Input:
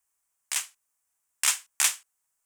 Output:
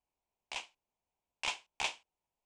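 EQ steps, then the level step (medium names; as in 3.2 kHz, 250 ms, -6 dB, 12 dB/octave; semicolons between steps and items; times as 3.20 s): tape spacing loss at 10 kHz 39 dB; high-order bell 1.5 kHz -14 dB 1 oct; +6.0 dB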